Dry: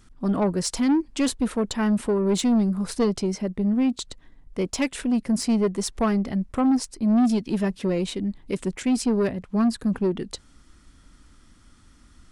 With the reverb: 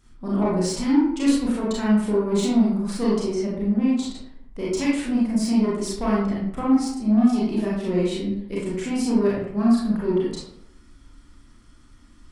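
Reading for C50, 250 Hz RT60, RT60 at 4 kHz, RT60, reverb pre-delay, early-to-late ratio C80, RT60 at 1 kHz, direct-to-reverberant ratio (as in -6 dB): -0.5 dB, 0.80 s, 0.40 s, 0.75 s, 29 ms, 4.5 dB, 0.70 s, -6.5 dB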